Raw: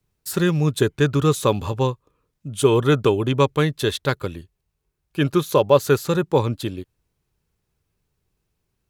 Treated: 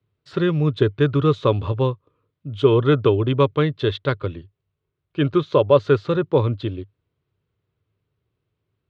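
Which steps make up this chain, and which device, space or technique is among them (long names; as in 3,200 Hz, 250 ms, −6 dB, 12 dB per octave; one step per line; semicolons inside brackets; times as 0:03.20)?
guitar cabinet (loudspeaker in its box 98–3,400 Hz, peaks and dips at 100 Hz +8 dB, 200 Hz −8 dB, 830 Hz −8 dB, 1,700 Hz −5 dB, 2,500 Hz −5 dB)
level +1.5 dB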